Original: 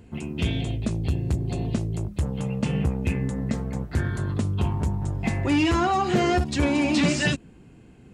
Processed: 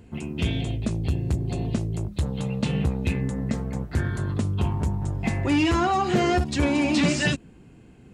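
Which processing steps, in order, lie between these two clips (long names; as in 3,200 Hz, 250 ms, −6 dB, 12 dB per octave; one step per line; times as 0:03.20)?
0:02.12–0:03.21: parametric band 3,900 Hz +11 dB 0.38 octaves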